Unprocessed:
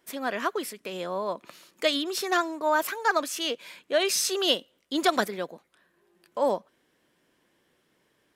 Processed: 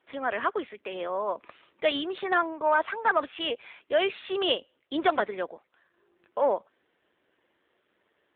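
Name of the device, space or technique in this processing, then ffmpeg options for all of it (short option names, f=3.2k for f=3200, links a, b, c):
telephone: -af "highpass=340,lowpass=3.4k,asoftclip=type=tanh:threshold=-14dB,volume=2.5dB" -ar 8000 -c:a libopencore_amrnb -b:a 7400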